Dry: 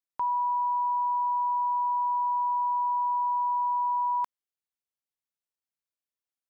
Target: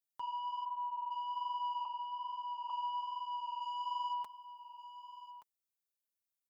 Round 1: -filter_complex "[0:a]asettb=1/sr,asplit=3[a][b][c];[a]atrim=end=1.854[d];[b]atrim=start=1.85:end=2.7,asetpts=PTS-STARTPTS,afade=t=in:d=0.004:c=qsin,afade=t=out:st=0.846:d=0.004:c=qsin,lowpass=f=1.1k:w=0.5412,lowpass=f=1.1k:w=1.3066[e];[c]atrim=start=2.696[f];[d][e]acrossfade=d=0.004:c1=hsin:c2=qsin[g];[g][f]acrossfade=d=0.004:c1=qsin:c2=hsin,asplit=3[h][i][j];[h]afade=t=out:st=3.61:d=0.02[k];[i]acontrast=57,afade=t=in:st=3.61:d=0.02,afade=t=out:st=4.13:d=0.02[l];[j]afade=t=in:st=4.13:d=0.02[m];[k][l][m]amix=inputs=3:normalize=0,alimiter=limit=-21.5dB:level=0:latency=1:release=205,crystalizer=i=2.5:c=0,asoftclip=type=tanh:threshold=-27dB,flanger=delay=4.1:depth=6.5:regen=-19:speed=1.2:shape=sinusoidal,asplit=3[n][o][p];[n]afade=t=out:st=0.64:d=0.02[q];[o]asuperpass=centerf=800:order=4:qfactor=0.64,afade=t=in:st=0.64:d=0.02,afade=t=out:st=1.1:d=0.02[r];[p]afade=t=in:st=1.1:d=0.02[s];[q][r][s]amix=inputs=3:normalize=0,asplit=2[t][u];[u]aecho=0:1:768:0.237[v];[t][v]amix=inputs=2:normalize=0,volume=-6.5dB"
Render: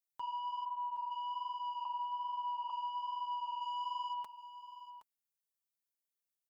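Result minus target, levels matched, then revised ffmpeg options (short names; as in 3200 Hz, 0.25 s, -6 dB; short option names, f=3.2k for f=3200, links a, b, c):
echo 0.406 s early
-filter_complex "[0:a]asettb=1/sr,asplit=3[a][b][c];[a]atrim=end=1.854[d];[b]atrim=start=1.85:end=2.7,asetpts=PTS-STARTPTS,afade=t=in:d=0.004:c=qsin,afade=t=out:st=0.846:d=0.004:c=qsin,lowpass=f=1.1k:w=0.5412,lowpass=f=1.1k:w=1.3066[e];[c]atrim=start=2.696[f];[d][e]acrossfade=d=0.004:c1=hsin:c2=qsin[g];[g][f]acrossfade=d=0.004:c1=qsin:c2=hsin,asplit=3[h][i][j];[h]afade=t=out:st=3.61:d=0.02[k];[i]acontrast=57,afade=t=in:st=3.61:d=0.02,afade=t=out:st=4.13:d=0.02[l];[j]afade=t=in:st=4.13:d=0.02[m];[k][l][m]amix=inputs=3:normalize=0,alimiter=limit=-21.5dB:level=0:latency=1:release=205,crystalizer=i=2.5:c=0,asoftclip=type=tanh:threshold=-27dB,flanger=delay=4.1:depth=6.5:regen=-19:speed=1.2:shape=sinusoidal,asplit=3[n][o][p];[n]afade=t=out:st=0.64:d=0.02[q];[o]asuperpass=centerf=800:order=4:qfactor=0.64,afade=t=in:st=0.64:d=0.02,afade=t=out:st=1.1:d=0.02[r];[p]afade=t=in:st=1.1:d=0.02[s];[q][r][s]amix=inputs=3:normalize=0,asplit=2[t][u];[u]aecho=0:1:1174:0.237[v];[t][v]amix=inputs=2:normalize=0,volume=-6.5dB"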